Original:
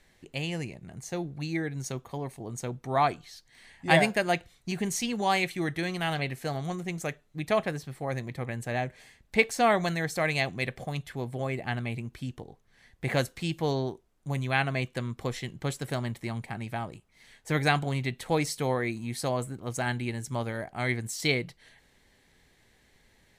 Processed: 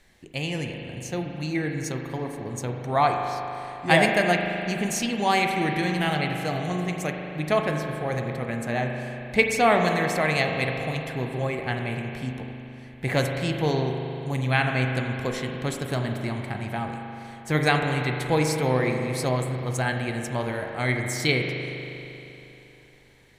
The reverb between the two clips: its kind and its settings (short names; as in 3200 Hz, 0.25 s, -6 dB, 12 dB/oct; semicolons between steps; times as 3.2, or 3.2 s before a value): spring tank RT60 3.3 s, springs 39 ms, chirp 50 ms, DRR 2.5 dB; gain +3 dB